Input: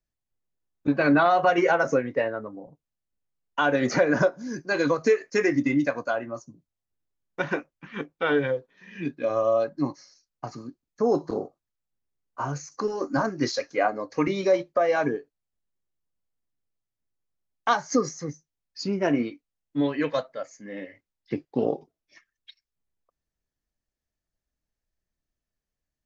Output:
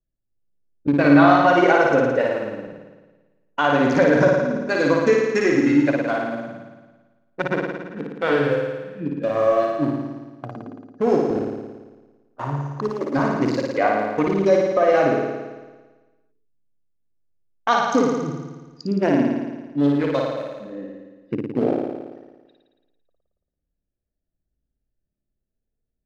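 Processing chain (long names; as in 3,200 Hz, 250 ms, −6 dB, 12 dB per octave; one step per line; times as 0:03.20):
adaptive Wiener filter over 41 samples
flutter between parallel walls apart 9.6 metres, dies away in 1.3 s
level +3.5 dB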